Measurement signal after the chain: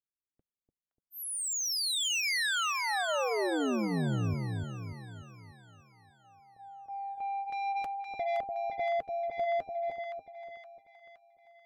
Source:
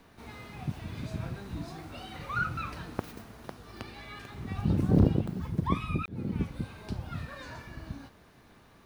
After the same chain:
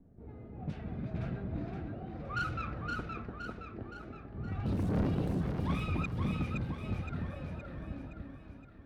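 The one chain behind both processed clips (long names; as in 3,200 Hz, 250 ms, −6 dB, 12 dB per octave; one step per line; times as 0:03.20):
low-pass that shuts in the quiet parts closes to 330 Hz, open at −25 dBFS
parametric band 1,000 Hz −9.5 dB 0.39 octaves
flanger 0.47 Hz, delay 1 ms, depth 4.7 ms, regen −64%
soft clipping −33.5 dBFS
echo with a time of its own for lows and highs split 890 Hz, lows 294 ms, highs 518 ms, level −3.5 dB
level +4.5 dB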